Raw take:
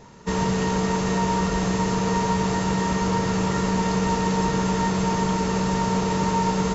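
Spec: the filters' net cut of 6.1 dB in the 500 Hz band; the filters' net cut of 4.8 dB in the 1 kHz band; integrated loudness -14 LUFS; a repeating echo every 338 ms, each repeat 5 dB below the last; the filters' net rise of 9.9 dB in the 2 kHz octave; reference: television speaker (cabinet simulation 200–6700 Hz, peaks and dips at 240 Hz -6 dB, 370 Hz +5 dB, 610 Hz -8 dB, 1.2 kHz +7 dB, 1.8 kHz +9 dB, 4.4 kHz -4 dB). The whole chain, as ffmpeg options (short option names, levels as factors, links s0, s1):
-af "highpass=f=200:w=0.5412,highpass=f=200:w=1.3066,equalizer=f=240:t=q:w=4:g=-6,equalizer=f=370:t=q:w=4:g=5,equalizer=f=610:t=q:w=4:g=-8,equalizer=f=1200:t=q:w=4:g=7,equalizer=f=1800:t=q:w=4:g=9,equalizer=f=4400:t=q:w=4:g=-4,lowpass=f=6700:w=0.5412,lowpass=f=6700:w=1.3066,equalizer=f=500:t=o:g=-7,equalizer=f=1000:t=o:g=-7,equalizer=f=2000:t=o:g=5,aecho=1:1:338|676|1014|1352|1690|2028|2366:0.562|0.315|0.176|0.0988|0.0553|0.031|0.0173,volume=2.99"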